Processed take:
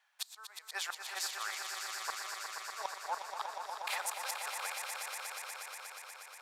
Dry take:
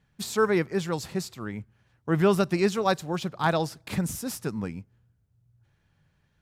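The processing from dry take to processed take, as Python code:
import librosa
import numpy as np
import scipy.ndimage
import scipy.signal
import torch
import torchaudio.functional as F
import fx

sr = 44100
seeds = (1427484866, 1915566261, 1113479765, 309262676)

y = scipy.signal.sosfilt(scipy.signal.butter(6, 720.0, 'highpass', fs=sr, output='sos'), x)
y = fx.gate_flip(y, sr, shuts_db=-25.0, range_db=-27)
y = fx.echo_swell(y, sr, ms=120, loudest=5, wet_db=-7.5)
y = y * librosa.db_to_amplitude(1.5)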